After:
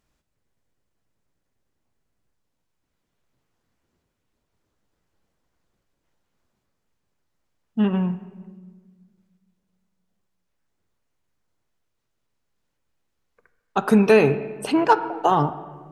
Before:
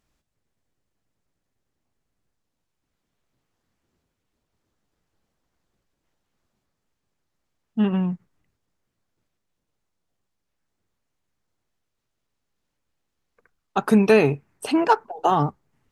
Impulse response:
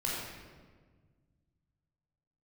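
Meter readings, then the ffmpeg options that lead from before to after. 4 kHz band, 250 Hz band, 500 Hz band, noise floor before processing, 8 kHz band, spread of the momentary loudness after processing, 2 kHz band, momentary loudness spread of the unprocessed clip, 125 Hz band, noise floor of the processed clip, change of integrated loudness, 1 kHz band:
0.0 dB, +0.5 dB, +1.5 dB, -79 dBFS, n/a, 13 LU, +1.0 dB, 13 LU, +0.5 dB, -76 dBFS, +1.0 dB, +1.5 dB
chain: -filter_complex "[0:a]asplit=2[a][b];[1:a]atrim=start_sample=2205,lowpass=3k,lowshelf=f=220:g=-9[c];[b][c]afir=irnorm=-1:irlink=0,volume=-14.5dB[d];[a][d]amix=inputs=2:normalize=0"

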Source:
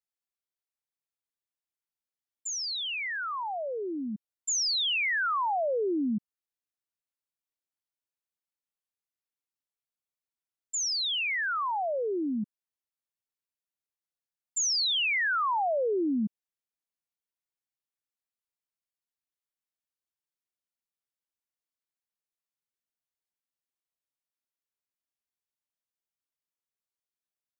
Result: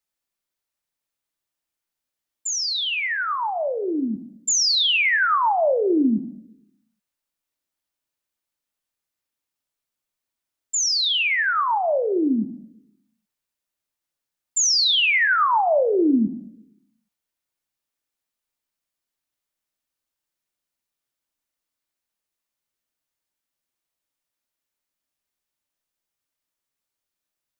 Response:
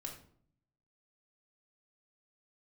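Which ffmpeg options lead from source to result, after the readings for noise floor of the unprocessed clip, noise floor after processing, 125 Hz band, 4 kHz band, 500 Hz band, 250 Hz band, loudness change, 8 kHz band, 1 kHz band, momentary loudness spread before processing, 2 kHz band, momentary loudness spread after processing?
under -85 dBFS, under -85 dBFS, +7.5 dB, +8.5 dB, +8.5 dB, +9.5 dB, +8.5 dB, n/a, +8.5 dB, 10 LU, +8.5 dB, 10 LU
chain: -filter_complex "[0:a]asplit=2[a][b];[1:a]atrim=start_sample=2205[c];[b][c]afir=irnorm=-1:irlink=0,volume=0dB[d];[a][d]amix=inputs=2:normalize=0,volume=4.5dB"

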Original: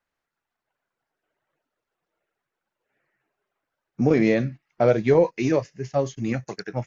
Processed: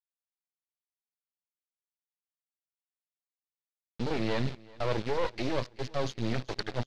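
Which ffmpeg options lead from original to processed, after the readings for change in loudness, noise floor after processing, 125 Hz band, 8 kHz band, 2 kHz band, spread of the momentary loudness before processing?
-10.5 dB, under -85 dBFS, -8.0 dB, n/a, -7.0 dB, 10 LU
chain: -af "areverse,acompressor=threshold=-26dB:ratio=5,areverse,aeval=exprs='0.126*(cos(1*acos(clip(val(0)/0.126,-1,1)))-cos(1*PI/2))+0.0126*(cos(6*acos(clip(val(0)/0.126,-1,1)))-cos(6*PI/2))':c=same,acrusher=bits=4:dc=4:mix=0:aa=0.000001,lowpass=f=4.2k:t=q:w=2.2,aecho=1:1:381|762|1143|1524:0.0708|0.0382|0.0206|0.0111"

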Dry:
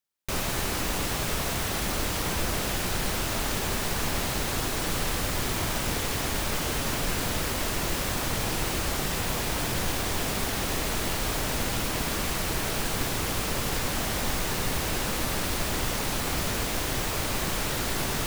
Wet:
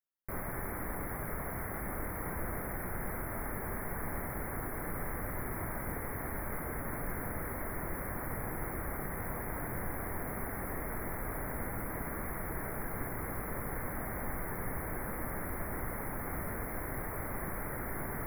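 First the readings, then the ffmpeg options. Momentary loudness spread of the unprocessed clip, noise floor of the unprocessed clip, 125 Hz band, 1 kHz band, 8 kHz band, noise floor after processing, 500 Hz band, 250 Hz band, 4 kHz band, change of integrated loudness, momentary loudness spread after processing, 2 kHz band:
0 LU, -30 dBFS, -8.5 dB, -8.5 dB, -18.0 dB, -40 dBFS, -8.5 dB, -8.5 dB, under -40 dB, -10.5 dB, 0 LU, -10.0 dB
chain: -af "asuperstop=centerf=5000:order=20:qfactor=0.62,volume=-8.5dB"

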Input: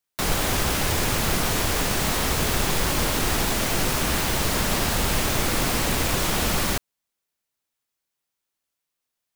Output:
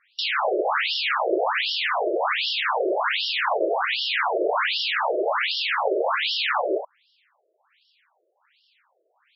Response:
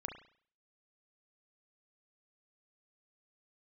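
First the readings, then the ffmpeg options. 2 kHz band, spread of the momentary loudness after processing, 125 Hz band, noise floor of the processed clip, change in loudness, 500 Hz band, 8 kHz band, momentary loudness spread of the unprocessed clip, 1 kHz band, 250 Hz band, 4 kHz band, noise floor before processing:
+3.0 dB, 1 LU, under -40 dB, -70 dBFS, -0.5 dB, +5.0 dB, under -35 dB, 0 LU, +4.0 dB, -7.0 dB, +1.5 dB, -83 dBFS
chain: -filter_complex "[0:a]asoftclip=type=tanh:threshold=-17.5dB,asplit=2[a][b];[1:a]atrim=start_sample=2205,atrim=end_sample=3087[c];[b][c]afir=irnorm=-1:irlink=0,volume=-16.5dB[d];[a][d]amix=inputs=2:normalize=0,asplit=2[e][f];[f]highpass=f=720:p=1,volume=31dB,asoftclip=type=tanh:threshold=-16dB[g];[e][g]amix=inputs=2:normalize=0,lowpass=f=2.4k:p=1,volume=-6dB,lowshelf=f=250:t=q:w=3:g=-8,afftfilt=real='re*between(b*sr/1024,460*pow(4000/460,0.5+0.5*sin(2*PI*1.3*pts/sr))/1.41,460*pow(4000/460,0.5+0.5*sin(2*PI*1.3*pts/sr))*1.41)':imag='im*between(b*sr/1024,460*pow(4000/460,0.5+0.5*sin(2*PI*1.3*pts/sr))/1.41,460*pow(4000/460,0.5+0.5*sin(2*PI*1.3*pts/sr))*1.41)':win_size=1024:overlap=0.75,volume=7dB"

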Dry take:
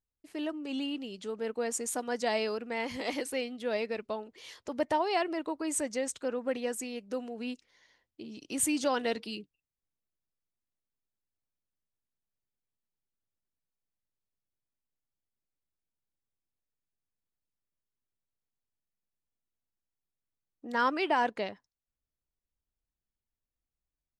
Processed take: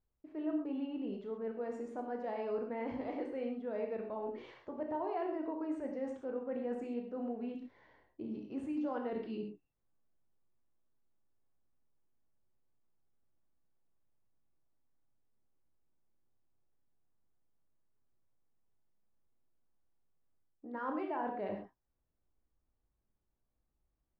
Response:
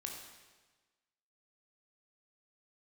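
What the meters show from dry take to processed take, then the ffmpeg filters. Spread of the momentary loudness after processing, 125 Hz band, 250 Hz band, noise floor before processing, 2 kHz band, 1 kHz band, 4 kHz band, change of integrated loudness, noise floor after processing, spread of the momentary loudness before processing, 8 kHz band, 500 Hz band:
10 LU, n/a, -3.0 dB, under -85 dBFS, -15.5 dB, -9.0 dB, under -20 dB, -7.0 dB, -84 dBFS, 12 LU, under -35 dB, -5.5 dB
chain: -filter_complex "[0:a]lowpass=1.1k,areverse,acompressor=threshold=-48dB:ratio=4,areverse[a];[1:a]atrim=start_sample=2205,atrim=end_sample=6174[b];[a][b]afir=irnorm=-1:irlink=0,volume=11.5dB"

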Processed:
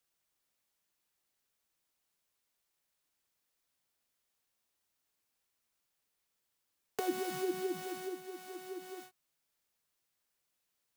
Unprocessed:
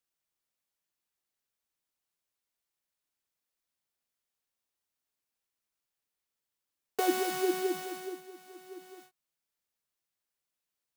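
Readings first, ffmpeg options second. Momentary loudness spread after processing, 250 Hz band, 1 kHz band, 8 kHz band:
12 LU, -5.0 dB, -7.0 dB, -6.5 dB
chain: -filter_complex "[0:a]acrossover=split=210[a][b];[b]acompressor=threshold=-47dB:ratio=2.5[c];[a][c]amix=inputs=2:normalize=0,volume=5dB"

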